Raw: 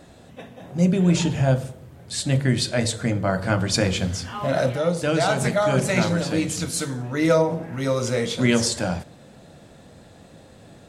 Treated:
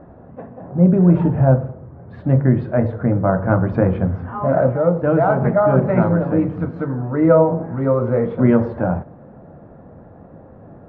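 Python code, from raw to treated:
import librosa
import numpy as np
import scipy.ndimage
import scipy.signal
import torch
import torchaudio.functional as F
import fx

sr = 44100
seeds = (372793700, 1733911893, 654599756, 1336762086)

y = scipy.signal.sosfilt(scipy.signal.butter(4, 1300.0, 'lowpass', fs=sr, output='sos'), x)
y = y * librosa.db_to_amplitude(6.0)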